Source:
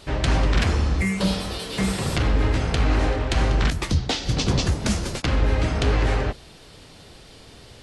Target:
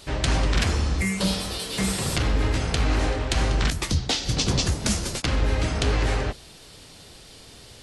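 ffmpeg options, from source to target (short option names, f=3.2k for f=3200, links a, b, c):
-af "highshelf=f=4.4k:g=9.5,volume=-2.5dB"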